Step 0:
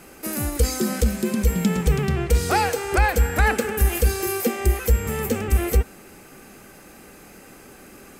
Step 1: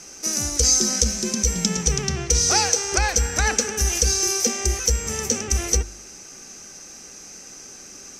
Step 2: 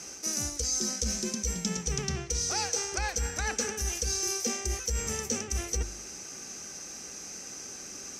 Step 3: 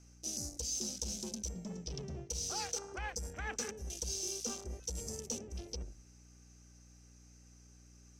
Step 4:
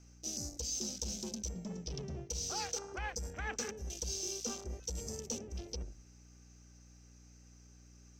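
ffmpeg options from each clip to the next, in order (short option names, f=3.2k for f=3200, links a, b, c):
-af "lowpass=f=5.9k:t=q:w=12,bandreject=f=49.88:t=h:w=4,bandreject=f=99.76:t=h:w=4,bandreject=f=149.64:t=h:w=4,bandreject=f=199.52:t=h:w=4,bandreject=f=249.4:t=h:w=4,bandreject=f=299.28:t=h:w=4,bandreject=f=349.16:t=h:w=4,crystalizer=i=2:c=0,volume=-4dB"
-af "highpass=43,areverse,acompressor=threshold=-27dB:ratio=6,areverse,volume=-1dB"
-filter_complex "[0:a]afwtdn=0.0141,aeval=exprs='val(0)+0.00282*(sin(2*PI*60*n/s)+sin(2*PI*2*60*n/s)/2+sin(2*PI*3*60*n/s)/3+sin(2*PI*4*60*n/s)/4+sin(2*PI*5*60*n/s)/5)':c=same,acrossover=split=820[a][b];[a]volume=31.5dB,asoftclip=hard,volume=-31.5dB[c];[c][b]amix=inputs=2:normalize=0,volume=-7.5dB"
-af "equalizer=f=10k:w=2.7:g=-14.5,volume=1dB"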